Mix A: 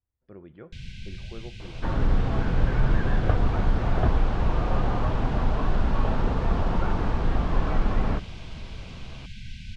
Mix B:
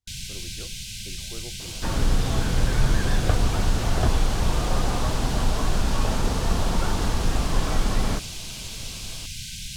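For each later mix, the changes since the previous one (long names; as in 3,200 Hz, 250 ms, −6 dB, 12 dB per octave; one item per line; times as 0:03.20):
first sound: entry −0.65 s
second sound: send on
master: remove low-pass filter 1,900 Hz 12 dB per octave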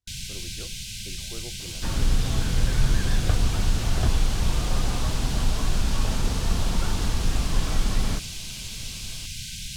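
second sound: add parametric band 660 Hz −6.5 dB 2.8 octaves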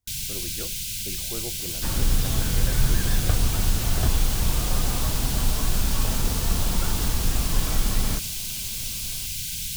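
speech +5.5 dB
master: remove high-frequency loss of the air 59 metres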